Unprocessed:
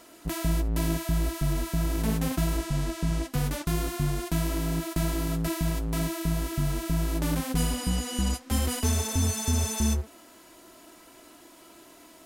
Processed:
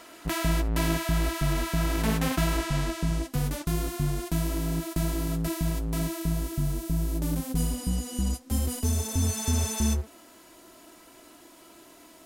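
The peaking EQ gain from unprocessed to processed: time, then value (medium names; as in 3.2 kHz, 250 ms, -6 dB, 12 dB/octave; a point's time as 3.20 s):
peaking EQ 1.8 kHz 3 oct
2.77 s +7 dB
3.28 s -3 dB
6.14 s -3 dB
6.86 s -10 dB
8.85 s -10 dB
9.46 s -0.5 dB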